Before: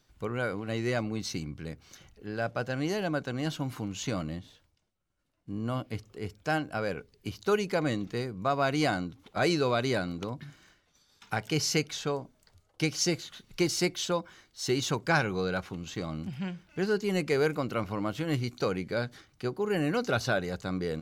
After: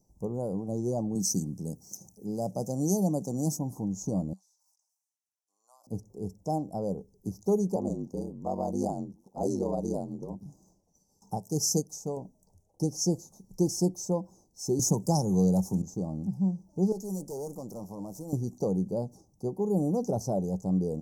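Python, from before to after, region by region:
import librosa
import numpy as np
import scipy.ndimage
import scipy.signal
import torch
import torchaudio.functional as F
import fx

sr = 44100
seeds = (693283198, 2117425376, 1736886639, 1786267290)

y = fx.chain(x, sr, fx.highpass(hz=150.0, slope=12),
    fx.bass_treble(bass_db=6, treble_db=15), at=(1.15, 3.59))
y = fx.chain(y, sr, fx.highpass(hz=1400.0, slope=24),
    fx.high_shelf(hz=8800.0, db=-9.0),
    fx.sustainer(db_per_s=43.0), at=(4.33, 5.87))
y = fx.chain(y, sr, fx.highpass(hz=140.0, slope=12),
    fx.ring_mod(carrier_hz=48.0), at=(7.75, 10.46))
y = fx.chain(y, sr, fx.high_shelf(hz=5000.0, db=10.0),
    fx.upward_expand(threshold_db=-36.0, expansion=1.5), at=(11.37, 12.17))
y = fx.chain(y, sr, fx.bass_treble(bass_db=4, treble_db=13),
    fx.band_squash(depth_pct=40), at=(14.79, 15.82))
y = fx.chain(y, sr, fx.tilt_eq(slope=2.5),
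    fx.tube_stage(drive_db=33.0, bias=0.55), at=(16.92, 18.33))
y = scipy.signal.sosfilt(scipy.signal.cheby1(4, 1.0, [890.0, 5700.0], 'bandstop', fs=sr, output='sos'), y)
y = fx.peak_eq(y, sr, hz=190.0, db=10.5, octaves=0.28)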